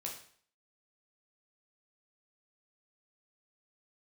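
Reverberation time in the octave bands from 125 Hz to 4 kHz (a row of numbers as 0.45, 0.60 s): 0.55, 0.50, 0.55, 0.55, 0.55, 0.50 s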